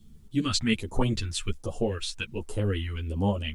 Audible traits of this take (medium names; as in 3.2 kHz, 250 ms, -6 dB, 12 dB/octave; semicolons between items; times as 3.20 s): phasing stages 2, 1.3 Hz, lowest notch 460–2300 Hz; a quantiser's noise floor 12-bit, dither none; a shimmering, thickened sound